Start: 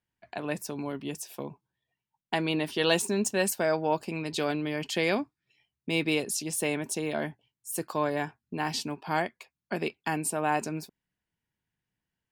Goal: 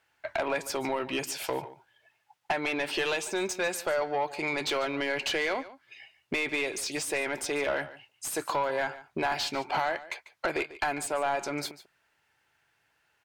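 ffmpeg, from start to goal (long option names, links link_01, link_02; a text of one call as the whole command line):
ffmpeg -i in.wav -filter_complex "[0:a]equalizer=frequency=220:width=1.4:gain=-12.5,acompressor=threshold=-40dB:ratio=16,asplit=2[link_01][link_02];[link_02]highpass=frequency=720:poles=1,volume=26dB,asoftclip=type=tanh:threshold=-18dB[link_03];[link_01][link_03]amix=inputs=2:normalize=0,lowpass=frequency=2800:poles=1,volume=-6dB,asetrate=41013,aresample=44100,asplit=2[link_04][link_05];[link_05]aecho=0:1:145:0.15[link_06];[link_04][link_06]amix=inputs=2:normalize=0,volume=2dB" out.wav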